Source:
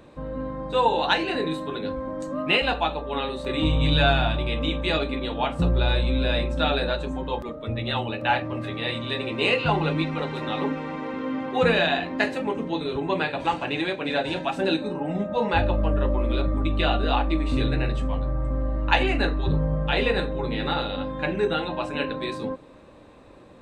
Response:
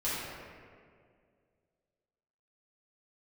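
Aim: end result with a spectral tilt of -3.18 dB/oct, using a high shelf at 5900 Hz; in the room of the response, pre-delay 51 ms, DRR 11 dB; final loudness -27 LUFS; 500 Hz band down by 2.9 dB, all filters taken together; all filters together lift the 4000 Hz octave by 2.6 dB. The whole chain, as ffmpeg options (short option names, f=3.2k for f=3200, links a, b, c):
-filter_complex "[0:a]equalizer=f=500:t=o:g=-3.5,equalizer=f=4k:t=o:g=4.5,highshelf=f=5.9k:g=-4.5,asplit=2[a][b];[1:a]atrim=start_sample=2205,adelay=51[c];[b][c]afir=irnorm=-1:irlink=0,volume=-18.5dB[d];[a][d]amix=inputs=2:normalize=0,volume=-1.5dB"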